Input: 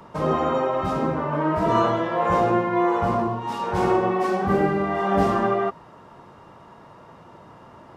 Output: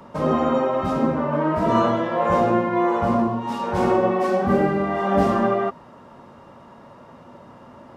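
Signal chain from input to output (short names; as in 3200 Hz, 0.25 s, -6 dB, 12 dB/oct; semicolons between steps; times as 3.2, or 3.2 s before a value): small resonant body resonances 240/560 Hz, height 10 dB, ringing for 95 ms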